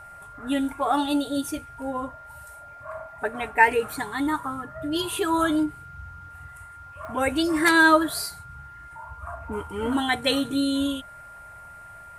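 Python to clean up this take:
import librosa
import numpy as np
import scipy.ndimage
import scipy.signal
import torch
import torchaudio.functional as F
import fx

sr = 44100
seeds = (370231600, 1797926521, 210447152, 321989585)

y = fx.fix_declick_ar(x, sr, threshold=10.0)
y = fx.notch(y, sr, hz=1400.0, q=30.0)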